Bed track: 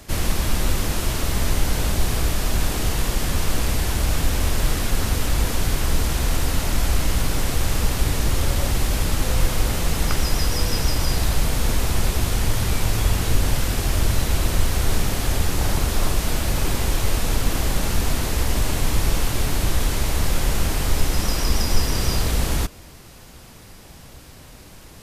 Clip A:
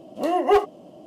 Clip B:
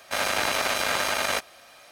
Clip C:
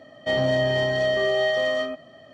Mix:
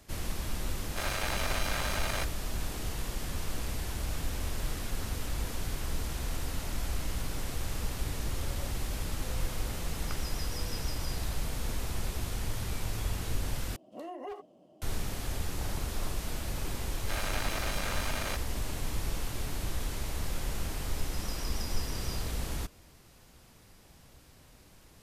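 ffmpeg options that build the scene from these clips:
-filter_complex "[2:a]asplit=2[s0][s1];[0:a]volume=0.211[s2];[1:a]acompressor=threshold=0.0708:ratio=6:attack=3.2:release=140:knee=1:detection=peak[s3];[s2]asplit=2[s4][s5];[s4]atrim=end=13.764[s6];[s3]atrim=end=1.06,asetpts=PTS-STARTPTS,volume=0.188[s7];[s5]atrim=start=14.816[s8];[s0]atrim=end=1.91,asetpts=PTS-STARTPTS,volume=0.335,afade=t=in:d=0.004:c=hsin,afade=t=out:st=1.906:d=0.004:c=hsin,adelay=850[s9];[s1]atrim=end=1.91,asetpts=PTS-STARTPTS,volume=0.266,afade=t=in:d=0.004:c=hsin,afade=t=out:st=1.906:d=0.004:c=hsin,adelay=16970[s10];[s6][s7]acrossfade=d=0.004:c1=hsin:c2=hsin[s11];[s11][s8]acrossfade=d=0.004:c1=hsin:c2=hsin[s12];[s12][s9][s10]amix=inputs=3:normalize=0"

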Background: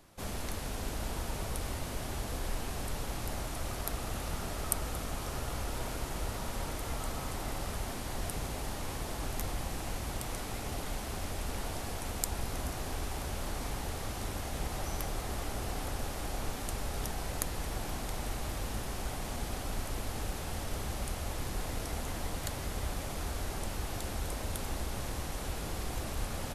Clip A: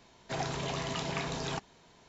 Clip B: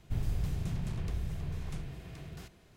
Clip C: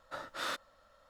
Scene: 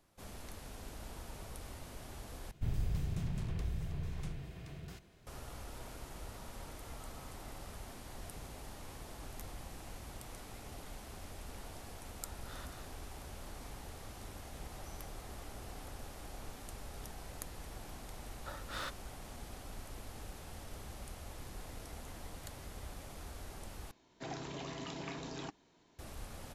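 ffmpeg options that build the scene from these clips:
-filter_complex "[3:a]asplit=2[s0][s1];[0:a]volume=0.282[s2];[s0]aecho=1:1:204:0.501[s3];[1:a]equalizer=f=300:w=3.1:g=10[s4];[s2]asplit=3[s5][s6][s7];[s5]atrim=end=2.514[s8];[2:a]atrim=end=2.76,asetpts=PTS-STARTPTS,volume=0.75[s9];[s6]atrim=start=5.266:end=23.914[s10];[s4]atrim=end=2.08,asetpts=PTS-STARTPTS,volume=0.316[s11];[s7]atrim=start=25.986[s12];[s3]atrim=end=1.09,asetpts=PTS-STARTPTS,volume=0.158,afade=t=in:d=0.004:c=hsin,afade=t=out:st=1.086:d=0.004:c=hsin,adelay=12100[s13];[s1]atrim=end=1.09,asetpts=PTS-STARTPTS,volume=0.562,afade=t=in:d=0.004:c=hsin,afade=t=out:st=1.086:d=0.004:c=hsin,adelay=18340[s14];[s8][s9]acrossfade=d=0.004:c1=hsin:c2=hsin[s15];[s15][s10]acrossfade=d=0.004:c1=hsin:c2=hsin[s16];[s16][s11]acrossfade=d=0.004:c1=hsin:c2=hsin[s17];[s17][s12]acrossfade=d=0.004:c1=hsin:c2=hsin[s18];[s18][s13][s14]amix=inputs=3:normalize=0"

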